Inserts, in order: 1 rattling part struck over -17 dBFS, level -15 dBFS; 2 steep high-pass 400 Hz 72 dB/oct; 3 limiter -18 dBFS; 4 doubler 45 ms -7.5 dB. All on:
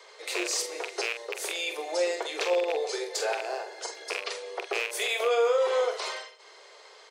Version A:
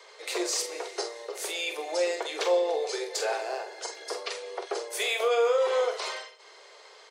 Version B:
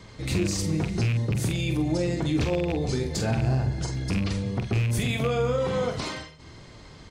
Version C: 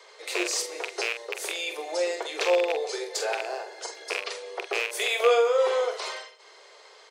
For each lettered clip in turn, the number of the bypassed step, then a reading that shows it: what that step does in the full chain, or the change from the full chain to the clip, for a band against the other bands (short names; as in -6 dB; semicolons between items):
1, 2 kHz band -2.5 dB; 2, 250 Hz band +20.0 dB; 3, crest factor change +4.0 dB